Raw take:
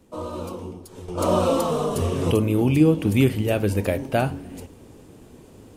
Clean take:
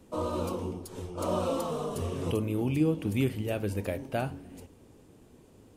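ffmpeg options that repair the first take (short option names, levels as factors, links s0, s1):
-af "adeclick=t=4,asetnsamples=n=441:p=0,asendcmd='1.08 volume volume -9.5dB',volume=1"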